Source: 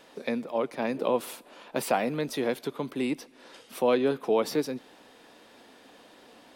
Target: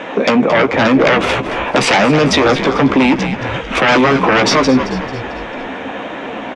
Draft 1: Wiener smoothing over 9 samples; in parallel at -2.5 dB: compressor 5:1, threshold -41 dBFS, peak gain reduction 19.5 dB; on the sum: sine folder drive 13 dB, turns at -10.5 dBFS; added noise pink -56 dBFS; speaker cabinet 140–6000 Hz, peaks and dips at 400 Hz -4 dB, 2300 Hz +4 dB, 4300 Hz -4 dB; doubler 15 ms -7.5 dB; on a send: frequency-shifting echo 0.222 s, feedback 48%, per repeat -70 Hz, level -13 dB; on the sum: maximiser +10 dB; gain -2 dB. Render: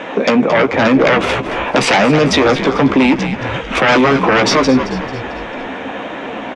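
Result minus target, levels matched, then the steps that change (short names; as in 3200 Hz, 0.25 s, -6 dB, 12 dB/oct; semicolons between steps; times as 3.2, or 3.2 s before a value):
compressor: peak gain reduction +5.5 dB
change: compressor 5:1, threshold -34 dBFS, peak gain reduction 13.5 dB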